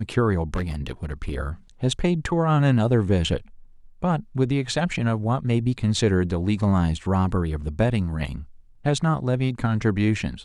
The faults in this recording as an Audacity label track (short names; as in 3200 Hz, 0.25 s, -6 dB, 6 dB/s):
0.550000	1.360000	clipped -21.5 dBFS